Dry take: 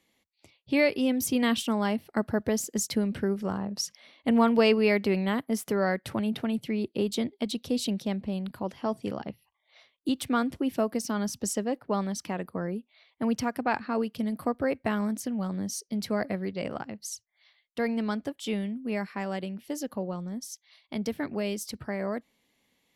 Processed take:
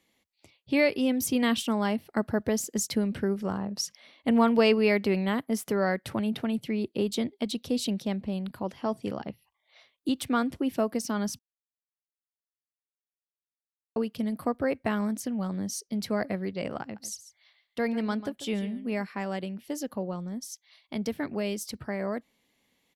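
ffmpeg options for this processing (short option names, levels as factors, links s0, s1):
-filter_complex "[0:a]asplit=3[s0][s1][s2];[s0]afade=t=out:st=16.95:d=0.02[s3];[s1]aecho=1:1:142:0.2,afade=t=in:st=16.95:d=0.02,afade=t=out:st=19.02:d=0.02[s4];[s2]afade=t=in:st=19.02:d=0.02[s5];[s3][s4][s5]amix=inputs=3:normalize=0,asplit=3[s6][s7][s8];[s6]atrim=end=11.39,asetpts=PTS-STARTPTS,afade=t=out:st=11.386:d=0.004:c=hsin[s9];[s7]atrim=start=11.39:end=13.96,asetpts=PTS-STARTPTS,volume=0[s10];[s8]atrim=start=13.96,asetpts=PTS-STARTPTS,afade=t=in:d=0.004:c=hsin[s11];[s9][s10][s11]concat=n=3:v=0:a=1"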